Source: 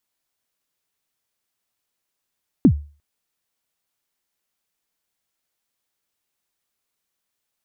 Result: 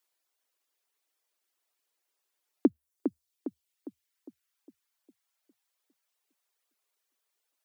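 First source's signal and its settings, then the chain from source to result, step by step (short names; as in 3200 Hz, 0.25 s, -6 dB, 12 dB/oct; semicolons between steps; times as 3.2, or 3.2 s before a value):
kick drum length 0.35 s, from 320 Hz, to 73 Hz, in 77 ms, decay 0.36 s, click off, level -5 dB
darkening echo 0.406 s, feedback 48%, low-pass 1400 Hz, level -6.5 dB; reverb removal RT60 0.81 s; inverse Chebyshev high-pass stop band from 160 Hz, stop band 40 dB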